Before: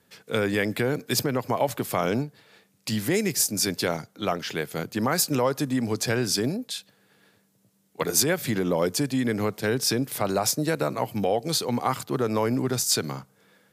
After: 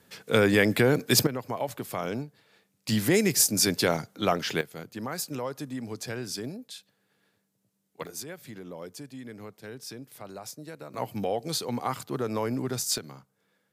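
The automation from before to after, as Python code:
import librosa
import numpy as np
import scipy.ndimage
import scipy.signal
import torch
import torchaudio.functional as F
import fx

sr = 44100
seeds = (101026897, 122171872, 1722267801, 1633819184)

y = fx.gain(x, sr, db=fx.steps((0.0, 3.5), (1.27, -7.0), (2.89, 1.5), (4.61, -10.0), (8.07, -17.0), (10.94, -5.0), (12.98, -12.5)))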